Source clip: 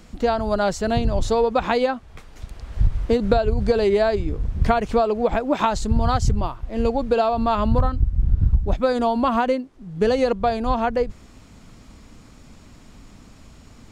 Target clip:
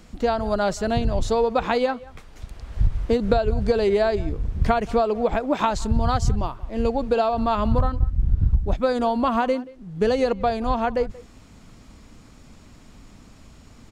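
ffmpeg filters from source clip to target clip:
ffmpeg -i in.wav -filter_complex "[0:a]asplit=2[link_01][link_02];[link_02]adelay=180,highpass=300,lowpass=3400,asoftclip=type=hard:threshold=-13dB,volume=-20dB[link_03];[link_01][link_03]amix=inputs=2:normalize=0,volume=-1.5dB" out.wav

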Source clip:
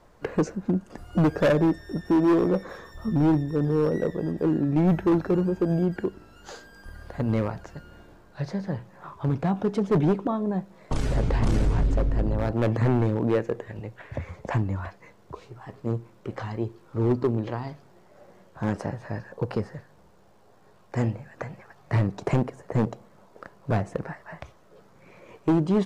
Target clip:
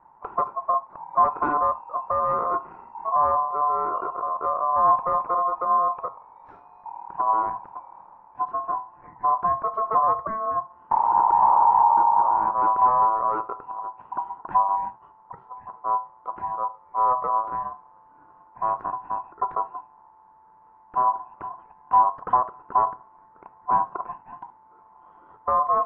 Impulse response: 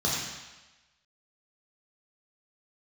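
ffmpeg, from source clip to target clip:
-filter_complex "[0:a]aeval=exprs='val(0)*sin(2*PI*880*n/s)':channel_layout=same,lowpass=frequency=1000:width_type=q:width=6.3,asplit=2[link_01][link_02];[1:a]atrim=start_sample=2205,atrim=end_sample=3528[link_03];[link_02][link_03]afir=irnorm=-1:irlink=0,volume=-24dB[link_04];[link_01][link_04]amix=inputs=2:normalize=0,volume=-5.5dB"

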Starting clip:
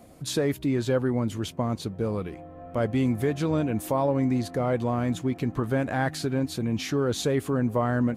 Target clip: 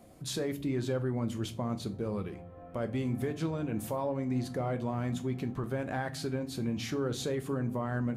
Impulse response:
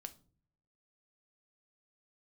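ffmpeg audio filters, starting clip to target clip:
-filter_complex "[0:a]alimiter=limit=-19dB:level=0:latency=1:release=254[link_01];[1:a]atrim=start_sample=2205[link_02];[link_01][link_02]afir=irnorm=-1:irlink=0"

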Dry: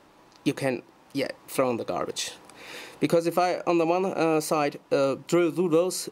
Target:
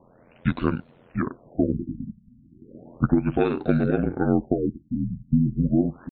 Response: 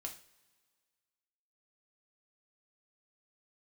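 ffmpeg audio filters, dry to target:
-af "asetrate=25476,aresample=44100,atempo=1.73107,aeval=exprs='val(0)*sin(2*PI*43*n/s)':channel_layout=same,afftfilt=real='re*lt(b*sr/1024,250*pow(4700/250,0.5+0.5*sin(2*PI*0.34*pts/sr)))':imag='im*lt(b*sr/1024,250*pow(4700/250,0.5+0.5*sin(2*PI*0.34*pts/sr)))':win_size=1024:overlap=0.75,volume=5dB"

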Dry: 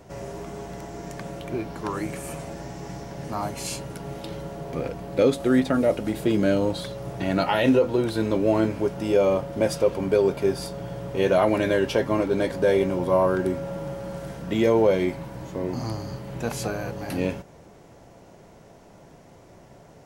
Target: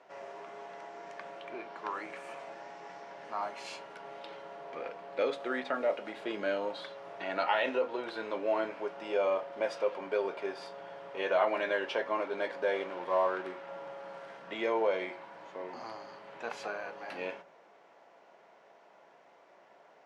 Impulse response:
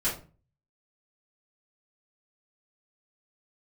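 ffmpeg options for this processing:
-filter_complex "[0:a]asettb=1/sr,asplit=3[link_01][link_02][link_03];[link_01]atrim=end=12.754[link_04];[link_02]atrim=start=12.75:end=13.69,asetpts=PTS-STARTPTS,afade=type=in:duration=0.004:curve=qsin,afade=type=out:start_time=0.936:duration=0.004:curve=qsin,aeval=exprs='sgn(val(0))*max(abs(val(0))-0.0126,0)':channel_layout=same[link_05];[link_03]atrim=start=13.686[link_06];[link_04][link_05]acrossfade=duration=0.004:curve1=hsin:curve2=qsin[link_07];[link_07][link_06]acrossfade=duration=0.004:curve1=qsin:curve2=hsin,highpass=710,lowpass=2900,asplit=2[link_08][link_09];[1:a]atrim=start_sample=2205[link_10];[link_09][link_10]afir=irnorm=-1:irlink=0,volume=-19dB[link_11];[link_08][link_11]amix=inputs=2:normalize=0,volume=-4dB"

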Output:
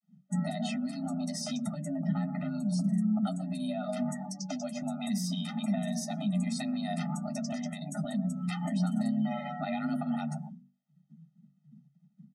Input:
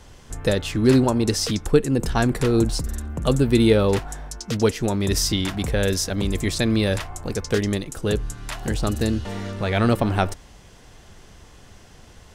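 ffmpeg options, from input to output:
ffmpeg -i in.wav -filter_complex "[0:a]asettb=1/sr,asplit=3[link_01][link_02][link_03];[link_01]atrim=end=1.964[link_04];[link_02]atrim=start=1.96:end=2.49,asetpts=PTS-STARTPTS,afade=type=in:duration=0.004:curve=qsin,afade=type=out:start_time=0.526:duration=0.004:curve=qsin,bass=frequency=250:gain=0,treble=frequency=4000:gain=-12[link_05];[link_03]atrim=start=2.486[link_06];[link_04][link_05]acrossfade=duration=0.004:curve1=hsin:curve2=qsin[link_07];[link_07][link_06]acrossfade=duration=0.004:curve1=qsin:curve2=hsin,bandreject=frequency=7400:width=17,asplit=2[link_08][link_09];[link_09]adelay=122,lowpass=frequency=1200:poles=1,volume=-12.5dB,asplit=2[link_10][link_11];[link_11]adelay=122,lowpass=frequency=1200:poles=1,volume=0.23,asplit=2[link_12][link_13];[link_13]adelay=122,lowpass=frequency=1200:poles=1,volume=0.23[link_14];[link_08][link_10][link_12][link_14]amix=inputs=4:normalize=0,agate=range=-33dB:threshold=-37dB:ratio=3:detection=peak,afftdn=noise_reduction=31:noise_floor=-38,acrossover=split=110|6200[link_15][link_16][link_17];[link_16]acompressor=threshold=-29dB:ratio=8[link_18];[link_15][link_18][link_17]amix=inputs=3:normalize=0,bandreject=frequency=50:width_type=h:width=6,bandreject=frequency=100:width_type=h:width=6,bandreject=frequency=150:width_type=h:width=6,bandreject=frequency=200:width_type=h:width=6,bandreject=frequency=250:width_type=h:width=6,afreqshift=140,alimiter=level_in=2.5dB:limit=-24dB:level=0:latency=1:release=188,volume=-2.5dB,highshelf=frequency=6500:gain=-4.5,flanger=delay=8.9:depth=1.7:regen=-27:speed=1.2:shape=sinusoidal,afftfilt=real='re*eq(mod(floor(b*sr/1024/300),2),0)':imag='im*eq(mod(floor(b*sr/1024/300),2),0)':win_size=1024:overlap=0.75,volume=8.5dB" out.wav

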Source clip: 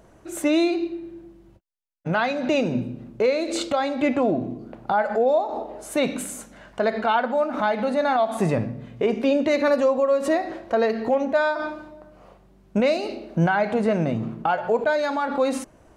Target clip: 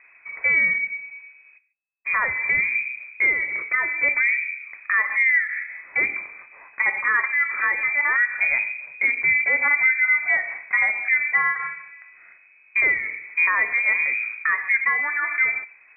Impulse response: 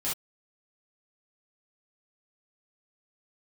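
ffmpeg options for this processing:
-filter_complex "[0:a]asplit=2[link_01][link_02];[1:a]atrim=start_sample=2205,asetrate=22050,aresample=44100,lowpass=1100[link_03];[link_02][link_03]afir=irnorm=-1:irlink=0,volume=-26dB[link_04];[link_01][link_04]amix=inputs=2:normalize=0,lowpass=frequency=2200:width_type=q:width=0.5098,lowpass=frequency=2200:width_type=q:width=0.6013,lowpass=frequency=2200:width_type=q:width=0.9,lowpass=frequency=2200:width_type=q:width=2.563,afreqshift=-2600"

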